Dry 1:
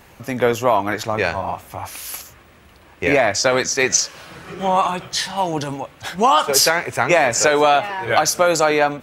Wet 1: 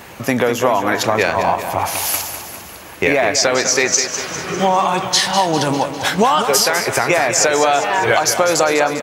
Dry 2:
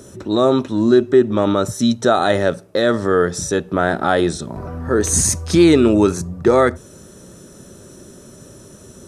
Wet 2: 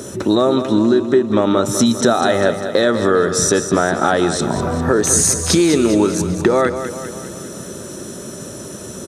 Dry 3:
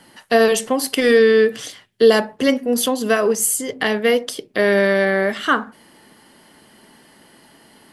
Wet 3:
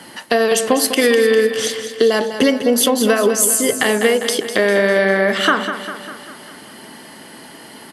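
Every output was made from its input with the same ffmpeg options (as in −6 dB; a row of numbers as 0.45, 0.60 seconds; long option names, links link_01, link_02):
-filter_complex "[0:a]highpass=frequency=150:poles=1,acompressor=threshold=-22dB:ratio=10,asplit=2[link_01][link_02];[link_02]aecho=0:1:200|400|600|800|1000|1200|1400:0.316|0.18|0.103|0.0586|0.0334|0.019|0.0108[link_03];[link_01][link_03]amix=inputs=2:normalize=0,alimiter=level_in=12dB:limit=-1dB:release=50:level=0:latency=1,volume=-1dB"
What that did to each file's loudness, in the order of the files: +2.0, +1.0, +2.0 LU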